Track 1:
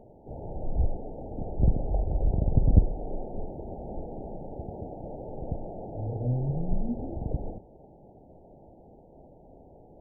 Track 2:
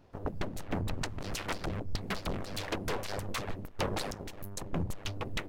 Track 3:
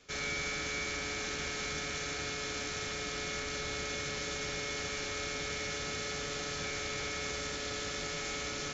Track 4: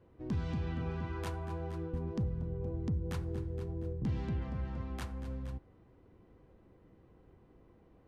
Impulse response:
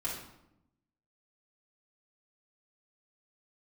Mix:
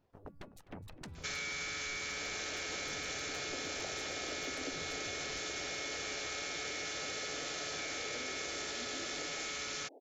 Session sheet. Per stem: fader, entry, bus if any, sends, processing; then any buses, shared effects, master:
-2.0 dB, 1.90 s, no send, echo send -13 dB, steep high-pass 260 Hz 96 dB/octave
-13.0 dB, 0.00 s, no send, echo send -17.5 dB, reverb removal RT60 0.79 s; de-hum 283.4 Hz, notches 9
+1.0 dB, 1.15 s, no send, no echo send, tilt shelf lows -4.5 dB, about 710 Hz
-15.0 dB, 0.75 s, no send, no echo send, none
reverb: none
echo: feedback delay 255 ms, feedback 60%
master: bass shelf 64 Hz -5.5 dB; compression 4:1, threshold -38 dBFS, peak gain reduction 9 dB

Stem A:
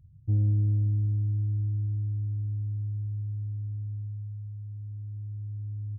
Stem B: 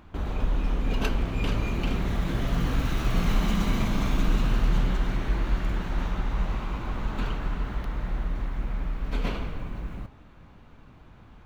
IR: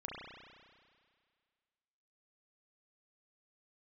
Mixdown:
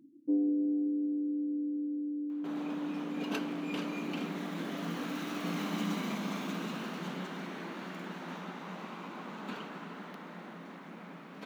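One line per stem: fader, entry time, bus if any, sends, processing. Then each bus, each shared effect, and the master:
+2.0 dB, 0.00 s, no send, reverb removal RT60 0.59 s; ring modulator 190 Hz
-6.0 dB, 2.30 s, no send, none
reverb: none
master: brick-wall FIR high-pass 160 Hz

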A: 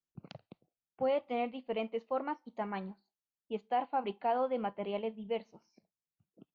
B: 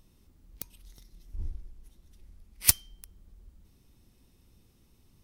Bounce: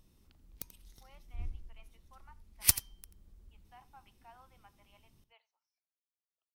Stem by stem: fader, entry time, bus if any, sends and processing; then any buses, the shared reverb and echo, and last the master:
-18.0 dB, 0.00 s, no send, echo send -22 dB, high-pass 950 Hz 24 dB/octave
-4.0 dB, 0.00 s, no send, echo send -15 dB, none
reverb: none
echo: delay 86 ms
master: none

